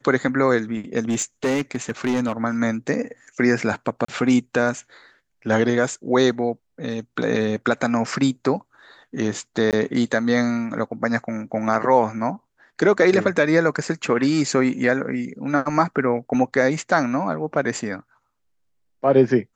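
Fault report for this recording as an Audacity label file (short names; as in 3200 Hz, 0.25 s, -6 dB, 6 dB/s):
1.090000	2.320000	clipped -17 dBFS
4.050000	4.080000	gap 34 ms
9.710000	9.730000	gap 18 ms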